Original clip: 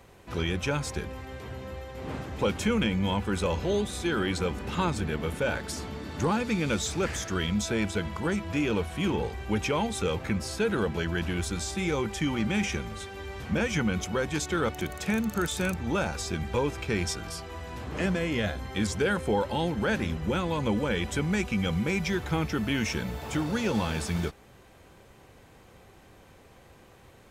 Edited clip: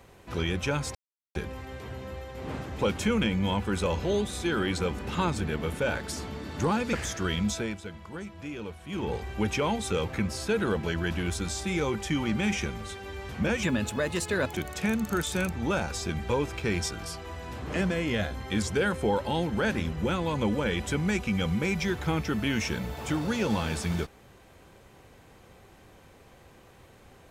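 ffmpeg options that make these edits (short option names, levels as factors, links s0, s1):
-filter_complex "[0:a]asplit=7[s0][s1][s2][s3][s4][s5][s6];[s0]atrim=end=0.95,asetpts=PTS-STARTPTS,afade=t=out:st=0.946:d=0.004:c=hsin,apad=pad_dur=0.4[s7];[s1]atrim=start=0.95:end=6.532,asetpts=PTS-STARTPTS,afade=t=in:d=0.004:c=hsin[s8];[s2]atrim=start=7.038:end=7.89,asetpts=PTS-STARTPTS,afade=t=out:st=0.572:d=0.28:silence=0.298538[s9];[s3]atrim=start=7.89:end=8.99,asetpts=PTS-STARTPTS,volume=0.299[s10];[s4]atrim=start=8.99:end=13.744,asetpts=PTS-STARTPTS,afade=t=in:d=0.28:silence=0.298538[s11];[s5]atrim=start=13.74:end=14.78,asetpts=PTS-STARTPTS,asetrate=50715,aresample=44100[s12];[s6]atrim=start=14.776[s13];[s7][s8]concat=n=2:v=0:a=1[s14];[s9][s10][s11]concat=n=3:v=0:a=1[s15];[s14][s15]acrossfade=d=0.004:c1=hsin:c2=hsin[s16];[s16][s12]acrossfade=d=0.004:c1=hsin:c2=hsin[s17];[s17][s13]acrossfade=d=0.004:c1=hsin:c2=hsin"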